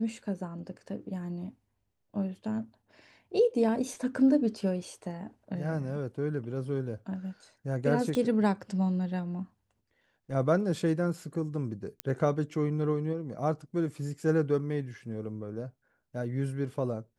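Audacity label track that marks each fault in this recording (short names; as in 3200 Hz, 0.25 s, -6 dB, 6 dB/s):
8.150000	8.150000	pop -19 dBFS
12.000000	12.000000	pop -16 dBFS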